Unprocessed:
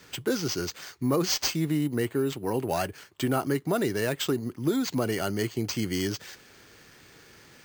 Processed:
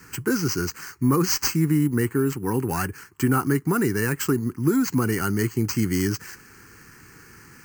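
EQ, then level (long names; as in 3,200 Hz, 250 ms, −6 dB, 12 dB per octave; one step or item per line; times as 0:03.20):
parametric band 2,100 Hz −3.5 dB 0.62 octaves
phaser with its sweep stopped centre 1,500 Hz, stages 4
+8.5 dB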